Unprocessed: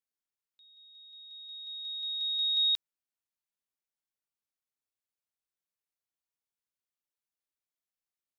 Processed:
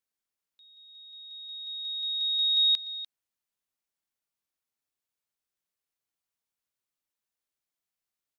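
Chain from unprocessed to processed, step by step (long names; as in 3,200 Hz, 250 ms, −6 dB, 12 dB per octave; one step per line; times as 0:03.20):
single-tap delay 296 ms −13.5 dB
level +3 dB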